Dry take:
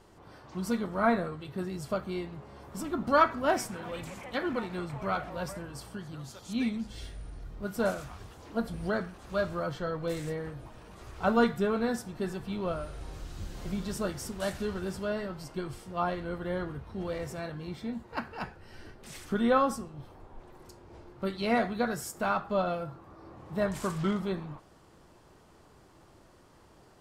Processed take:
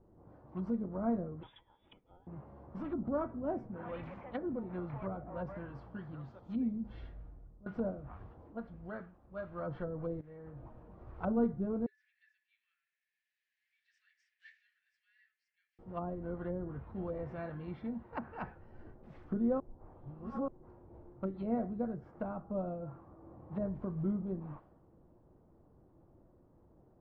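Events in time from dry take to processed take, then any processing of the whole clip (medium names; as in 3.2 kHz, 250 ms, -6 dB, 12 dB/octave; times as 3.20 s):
1.43–2.27 s: frequency inversion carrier 3.6 kHz
6.94–7.66 s: fade out, to -16.5 dB
8.40–9.71 s: dip -9 dB, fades 0.20 s
10.21–10.64 s: fade in quadratic, from -16.5 dB
11.86–15.79 s: rippled Chebyshev high-pass 1.7 kHz, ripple 3 dB
19.60–20.48 s: reverse
whole clip: low-pass that closes with the level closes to 460 Hz, closed at -29 dBFS; band-stop 410 Hz, Q 12; level-controlled noise filter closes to 450 Hz, open at -29 dBFS; trim -3.5 dB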